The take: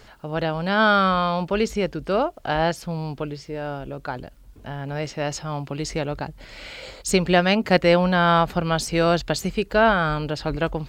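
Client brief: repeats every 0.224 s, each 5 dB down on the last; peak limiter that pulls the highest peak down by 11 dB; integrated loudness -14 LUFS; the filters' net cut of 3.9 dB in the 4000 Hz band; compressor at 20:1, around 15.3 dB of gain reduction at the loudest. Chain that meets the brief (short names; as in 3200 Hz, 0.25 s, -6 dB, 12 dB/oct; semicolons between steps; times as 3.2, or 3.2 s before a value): bell 4000 Hz -5.5 dB; compressor 20:1, threshold -27 dBFS; limiter -28.5 dBFS; feedback echo 0.224 s, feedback 56%, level -5 dB; gain +22 dB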